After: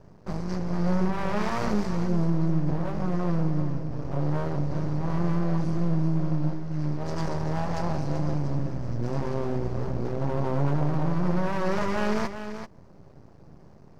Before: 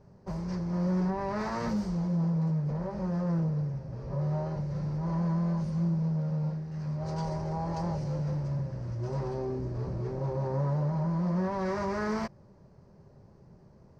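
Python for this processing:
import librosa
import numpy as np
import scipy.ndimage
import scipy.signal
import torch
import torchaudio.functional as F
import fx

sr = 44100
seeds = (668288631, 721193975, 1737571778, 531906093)

y = np.maximum(x, 0.0)
y = y + 10.0 ** (-9.5 / 20.0) * np.pad(y, (int(386 * sr / 1000.0), 0))[:len(y)]
y = fx.wow_flutter(y, sr, seeds[0], rate_hz=2.1, depth_cents=25.0)
y = F.gain(torch.from_numpy(y), 8.0).numpy()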